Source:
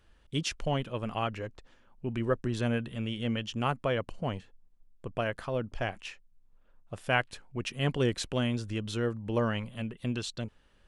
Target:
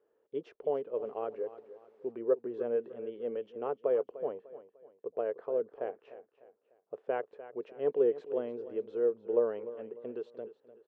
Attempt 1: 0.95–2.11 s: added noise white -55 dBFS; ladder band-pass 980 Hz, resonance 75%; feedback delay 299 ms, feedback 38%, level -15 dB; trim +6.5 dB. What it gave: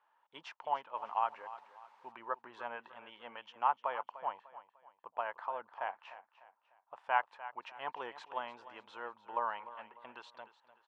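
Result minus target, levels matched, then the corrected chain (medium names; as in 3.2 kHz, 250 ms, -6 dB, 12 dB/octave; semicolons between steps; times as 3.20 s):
1 kHz band +14.5 dB
0.95–2.11 s: added noise white -55 dBFS; ladder band-pass 470 Hz, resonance 75%; feedback delay 299 ms, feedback 38%, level -15 dB; trim +6.5 dB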